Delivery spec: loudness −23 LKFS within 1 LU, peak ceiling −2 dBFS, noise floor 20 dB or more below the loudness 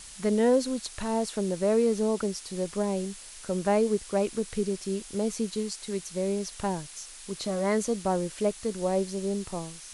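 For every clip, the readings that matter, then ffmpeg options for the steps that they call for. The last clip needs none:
background noise floor −46 dBFS; target noise floor −49 dBFS; integrated loudness −29.0 LKFS; sample peak −13.5 dBFS; target loudness −23.0 LKFS
→ -af "afftdn=noise_reduction=6:noise_floor=-46"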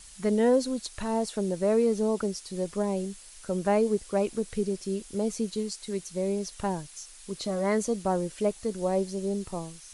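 background noise floor −49 dBFS; integrated loudness −29.0 LKFS; sample peak −13.5 dBFS; target loudness −23.0 LKFS
→ -af "volume=6dB"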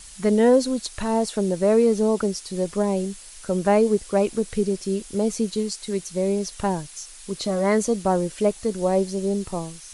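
integrated loudness −23.0 LKFS; sample peak −7.5 dBFS; background noise floor −43 dBFS

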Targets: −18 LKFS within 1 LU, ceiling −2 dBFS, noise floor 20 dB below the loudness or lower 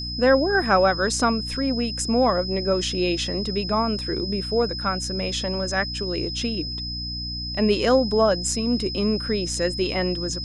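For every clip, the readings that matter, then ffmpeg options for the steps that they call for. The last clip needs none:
mains hum 60 Hz; hum harmonics up to 300 Hz; level of the hum −31 dBFS; interfering tone 5,100 Hz; level of the tone −30 dBFS; integrated loudness −23.0 LKFS; sample peak −6.5 dBFS; target loudness −18.0 LKFS
→ -af "bandreject=frequency=60:width_type=h:width=4,bandreject=frequency=120:width_type=h:width=4,bandreject=frequency=180:width_type=h:width=4,bandreject=frequency=240:width_type=h:width=4,bandreject=frequency=300:width_type=h:width=4"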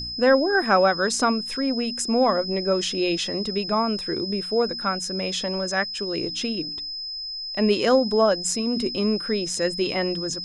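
mains hum none found; interfering tone 5,100 Hz; level of the tone −30 dBFS
→ -af "bandreject=frequency=5100:width=30"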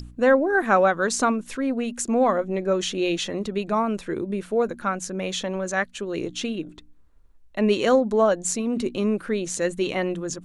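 interfering tone none found; integrated loudness −24.0 LKFS; sample peak −7.0 dBFS; target loudness −18.0 LKFS
→ -af "volume=6dB,alimiter=limit=-2dB:level=0:latency=1"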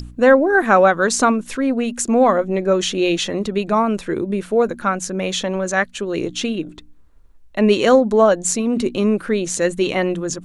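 integrated loudness −18.0 LKFS; sample peak −2.0 dBFS; background noise floor −45 dBFS

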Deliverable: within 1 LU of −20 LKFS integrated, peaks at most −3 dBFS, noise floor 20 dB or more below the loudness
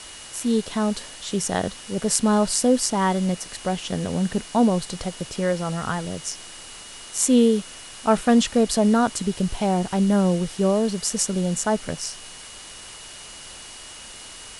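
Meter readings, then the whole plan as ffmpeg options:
interfering tone 2,900 Hz; level of the tone −46 dBFS; background noise floor −41 dBFS; target noise floor −43 dBFS; integrated loudness −22.5 LKFS; sample peak −1.5 dBFS; target loudness −20.0 LKFS
→ -af "bandreject=frequency=2900:width=30"
-af "afftdn=noise_reduction=6:noise_floor=-41"
-af "volume=2.5dB,alimiter=limit=-3dB:level=0:latency=1"

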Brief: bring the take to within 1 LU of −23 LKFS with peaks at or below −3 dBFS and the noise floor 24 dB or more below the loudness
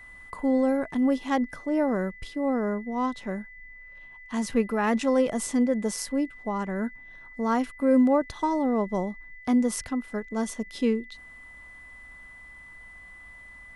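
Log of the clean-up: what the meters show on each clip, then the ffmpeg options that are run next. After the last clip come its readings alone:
interfering tone 2,000 Hz; level of the tone −45 dBFS; integrated loudness −27.0 LKFS; sample peak −12.0 dBFS; target loudness −23.0 LKFS
→ -af "bandreject=frequency=2000:width=30"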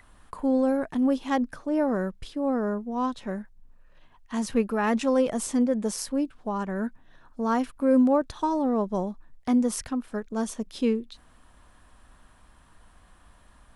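interfering tone none found; integrated loudness −27.0 LKFS; sample peak −12.0 dBFS; target loudness −23.0 LKFS
→ -af "volume=4dB"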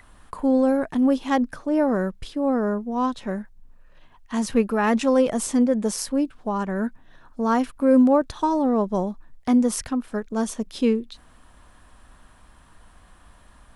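integrated loudness −23.0 LKFS; sample peak −8.0 dBFS; background noise floor −53 dBFS

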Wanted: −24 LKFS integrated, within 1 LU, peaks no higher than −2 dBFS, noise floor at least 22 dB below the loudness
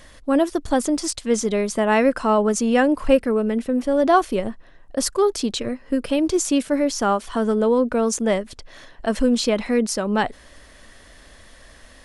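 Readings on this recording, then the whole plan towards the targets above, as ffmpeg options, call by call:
integrated loudness −21.0 LKFS; sample peak −4.0 dBFS; target loudness −24.0 LKFS
→ -af "volume=-3dB"

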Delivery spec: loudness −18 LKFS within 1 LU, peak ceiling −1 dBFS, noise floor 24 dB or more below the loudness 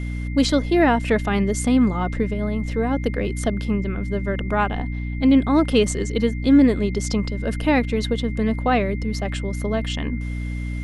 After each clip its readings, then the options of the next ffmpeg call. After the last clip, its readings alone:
mains hum 60 Hz; hum harmonics up to 300 Hz; level of the hum −24 dBFS; interfering tone 2,100 Hz; level of the tone −39 dBFS; integrated loudness −21.5 LKFS; sample peak −4.0 dBFS; target loudness −18.0 LKFS
→ -af "bandreject=frequency=60:width_type=h:width=6,bandreject=frequency=120:width_type=h:width=6,bandreject=frequency=180:width_type=h:width=6,bandreject=frequency=240:width_type=h:width=6,bandreject=frequency=300:width_type=h:width=6"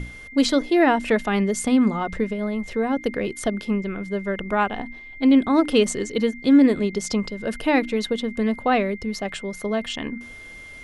mains hum none found; interfering tone 2,100 Hz; level of the tone −39 dBFS
→ -af "bandreject=frequency=2100:width=30"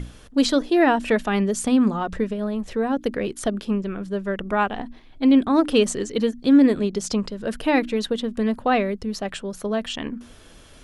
interfering tone none found; integrated loudness −22.0 LKFS; sample peak −6.5 dBFS; target loudness −18.0 LKFS
→ -af "volume=4dB"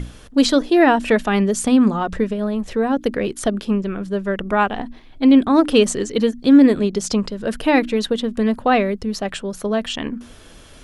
integrated loudness −18.0 LKFS; sample peak −2.5 dBFS; background noise floor −43 dBFS

